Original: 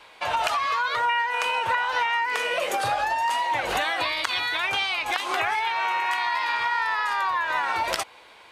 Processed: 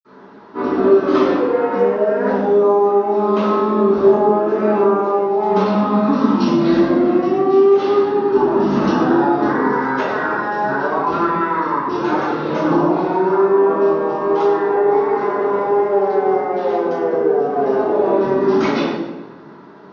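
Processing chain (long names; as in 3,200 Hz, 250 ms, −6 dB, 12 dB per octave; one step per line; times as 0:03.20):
high-pass filter 530 Hz 12 dB per octave
wrong playback speed 78 rpm record played at 33 rpm
convolution reverb RT60 1.2 s, pre-delay 46 ms, DRR −60 dB
level −2.5 dB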